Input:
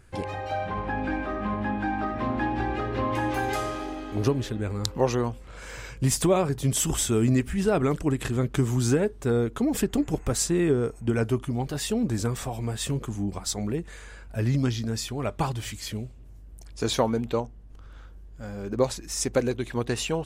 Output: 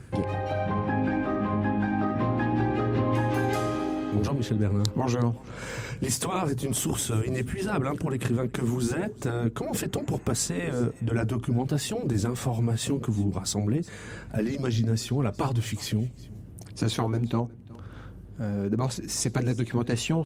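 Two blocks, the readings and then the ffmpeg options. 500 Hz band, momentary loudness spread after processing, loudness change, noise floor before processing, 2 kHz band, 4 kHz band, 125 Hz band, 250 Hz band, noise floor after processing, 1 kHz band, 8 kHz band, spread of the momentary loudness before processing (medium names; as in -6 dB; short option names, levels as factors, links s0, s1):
-3.5 dB, 7 LU, -1.0 dB, -45 dBFS, -1.0 dB, -1.5 dB, +1.5 dB, 0.0 dB, -45 dBFS, -1.5 dB, -2.0 dB, 10 LU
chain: -filter_complex "[0:a]highpass=f=100:w=0.5412,highpass=f=100:w=1.3066,afftfilt=real='re*lt(hypot(re,im),0.355)':imag='im*lt(hypot(re,im),0.355)':win_size=1024:overlap=0.75,lowshelf=f=350:g=12,acompressor=threshold=0.00794:ratio=1.5,aeval=exprs='val(0)+0.00126*(sin(2*PI*50*n/s)+sin(2*PI*2*50*n/s)/2+sin(2*PI*3*50*n/s)/3+sin(2*PI*4*50*n/s)/4+sin(2*PI*5*50*n/s)/5)':c=same,asplit=2[s0][s1];[s1]aecho=0:1:364:0.0794[s2];[s0][s2]amix=inputs=2:normalize=0,volume=1.88" -ar 48000 -c:a libopus -b:a 48k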